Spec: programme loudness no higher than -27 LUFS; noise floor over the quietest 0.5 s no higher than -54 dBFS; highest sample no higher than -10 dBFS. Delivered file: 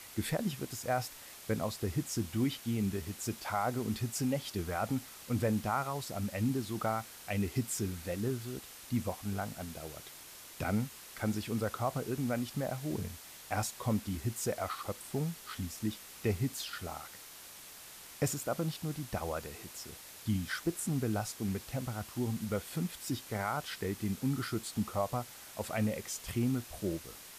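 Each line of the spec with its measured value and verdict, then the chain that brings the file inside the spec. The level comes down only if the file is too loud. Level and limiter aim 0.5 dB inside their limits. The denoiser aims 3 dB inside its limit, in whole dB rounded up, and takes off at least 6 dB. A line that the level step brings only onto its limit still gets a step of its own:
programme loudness -36.0 LUFS: OK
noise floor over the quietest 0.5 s -51 dBFS: fail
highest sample -19.0 dBFS: OK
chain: denoiser 6 dB, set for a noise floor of -51 dBFS

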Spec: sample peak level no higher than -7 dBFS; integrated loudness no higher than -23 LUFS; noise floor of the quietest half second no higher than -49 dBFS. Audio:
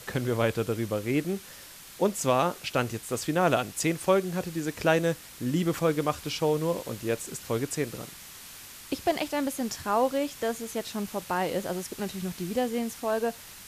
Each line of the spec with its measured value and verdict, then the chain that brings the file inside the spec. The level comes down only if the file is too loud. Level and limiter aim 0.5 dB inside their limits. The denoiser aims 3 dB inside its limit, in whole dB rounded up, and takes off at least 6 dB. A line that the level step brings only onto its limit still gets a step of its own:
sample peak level -10.5 dBFS: OK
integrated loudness -29.0 LUFS: OK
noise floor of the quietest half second -47 dBFS: fail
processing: denoiser 6 dB, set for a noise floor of -47 dBFS

